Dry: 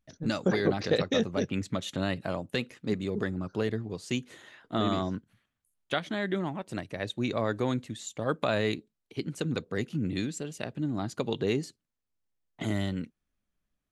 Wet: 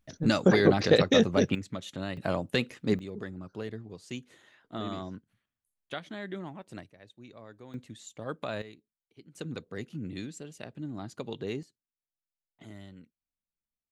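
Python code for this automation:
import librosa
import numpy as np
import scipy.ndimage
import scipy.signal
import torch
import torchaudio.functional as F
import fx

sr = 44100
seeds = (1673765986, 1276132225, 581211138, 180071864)

y = fx.gain(x, sr, db=fx.steps((0.0, 5.0), (1.55, -5.5), (2.17, 3.0), (2.99, -8.0), (6.9, -20.0), (7.74, -7.5), (8.62, -19.5), (9.35, -7.0), (11.63, -17.0)))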